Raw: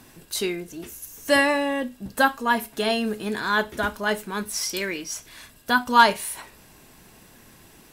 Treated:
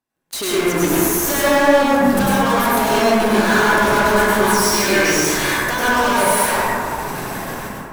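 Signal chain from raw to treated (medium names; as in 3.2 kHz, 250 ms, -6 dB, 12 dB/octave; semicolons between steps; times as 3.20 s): compression, threshold -29 dBFS, peak gain reduction 18 dB; 3.35–5.96 s: doubling 14 ms -7 dB; level rider gain up to 14 dB; peaking EQ 890 Hz +6 dB 1.8 oct; saturation -12 dBFS, distortion -11 dB; bass shelf 170 Hz -3 dB; gate -34 dBFS, range -16 dB; waveshaping leveller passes 5; plate-style reverb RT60 2.4 s, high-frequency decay 0.25×, pre-delay 85 ms, DRR -9 dB; trim -11 dB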